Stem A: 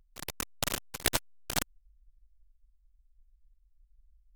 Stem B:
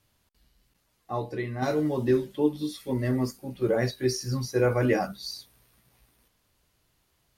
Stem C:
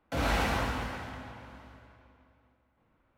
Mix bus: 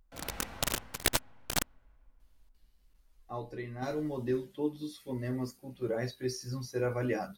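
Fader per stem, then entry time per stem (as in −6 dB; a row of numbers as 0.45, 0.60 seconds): 0.0, −8.5, −17.5 decibels; 0.00, 2.20, 0.00 seconds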